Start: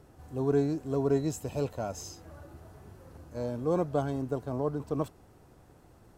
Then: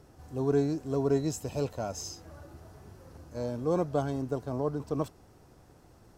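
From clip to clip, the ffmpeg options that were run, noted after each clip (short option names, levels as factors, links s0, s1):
-af "equalizer=f=5400:w=2:g=5.5"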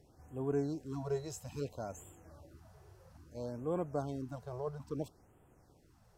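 -af "afftfilt=real='re*(1-between(b*sr/1024,220*pow(5100/220,0.5+0.5*sin(2*PI*0.6*pts/sr))/1.41,220*pow(5100/220,0.5+0.5*sin(2*PI*0.6*pts/sr))*1.41))':imag='im*(1-between(b*sr/1024,220*pow(5100/220,0.5+0.5*sin(2*PI*0.6*pts/sr))/1.41,220*pow(5100/220,0.5+0.5*sin(2*PI*0.6*pts/sr))*1.41))':win_size=1024:overlap=0.75,volume=0.422"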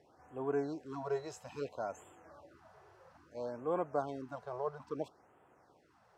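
-af "bandpass=f=1200:t=q:w=0.69:csg=0,volume=2.11"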